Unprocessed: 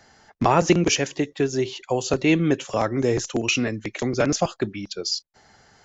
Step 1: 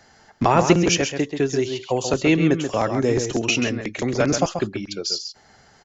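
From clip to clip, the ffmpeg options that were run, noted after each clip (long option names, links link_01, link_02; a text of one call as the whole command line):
ffmpeg -i in.wav -filter_complex "[0:a]asplit=2[link_01][link_02];[link_02]adelay=134.1,volume=-7dB,highshelf=frequency=4000:gain=-3.02[link_03];[link_01][link_03]amix=inputs=2:normalize=0,volume=1dB" out.wav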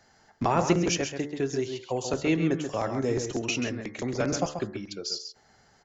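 ffmpeg -i in.wav -af "equalizer=frequency=2900:width=1.5:gain=-2.5,bandreject=frequency=73.65:width_type=h:width=4,bandreject=frequency=147.3:width_type=h:width=4,bandreject=frequency=220.95:width_type=h:width=4,bandreject=frequency=294.6:width_type=h:width=4,bandreject=frequency=368.25:width_type=h:width=4,bandreject=frequency=441.9:width_type=h:width=4,bandreject=frequency=515.55:width_type=h:width=4,bandreject=frequency=589.2:width_type=h:width=4,bandreject=frequency=662.85:width_type=h:width=4,bandreject=frequency=736.5:width_type=h:width=4,bandreject=frequency=810.15:width_type=h:width=4,bandreject=frequency=883.8:width_type=h:width=4,bandreject=frequency=957.45:width_type=h:width=4,bandreject=frequency=1031.1:width_type=h:width=4,bandreject=frequency=1104.75:width_type=h:width=4,bandreject=frequency=1178.4:width_type=h:width=4,bandreject=frequency=1252.05:width_type=h:width=4,bandreject=frequency=1325.7:width_type=h:width=4,bandreject=frequency=1399.35:width_type=h:width=4,bandreject=frequency=1473:width_type=h:width=4,bandreject=frequency=1546.65:width_type=h:width=4,bandreject=frequency=1620.3:width_type=h:width=4,bandreject=frequency=1693.95:width_type=h:width=4,bandreject=frequency=1767.6:width_type=h:width=4,bandreject=frequency=1841.25:width_type=h:width=4,bandreject=frequency=1914.9:width_type=h:width=4,bandreject=frequency=1988.55:width_type=h:width=4,bandreject=frequency=2062.2:width_type=h:width=4,bandreject=frequency=2135.85:width_type=h:width=4,volume=-7dB" out.wav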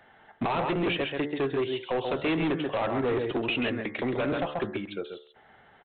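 ffmpeg -i in.wav -af "lowshelf=frequency=230:gain=-9,alimiter=limit=-19.5dB:level=0:latency=1:release=162,aresample=8000,asoftclip=type=hard:threshold=-30dB,aresample=44100,volume=6.5dB" out.wav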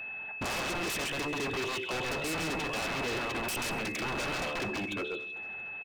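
ffmpeg -i in.wav -af "aeval=exprs='0.0211*(abs(mod(val(0)/0.0211+3,4)-2)-1)':channel_layout=same,aeval=exprs='val(0)+0.00891*sin(2*PI*2600*n/s)':channel_layout=same,aecho=1:1:226|452|678|904:0.1|0.052|0.027|0.0141,volume=3.5dB" out.wav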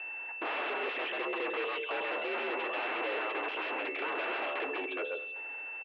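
ffmpeg -i in.wav -af "highpass=frequency=250:width_type=q:width=0.5412,highpass=frequency=250:width_type=q:width=1.307,lowpass=frequency=3000:width_type=q:width=0.5176,lowpass=frequency=3000:width_type=q:width=0.7071,lowpass=frequency=3000:width_type=q:width=1.932,afreqshift=69" out.wav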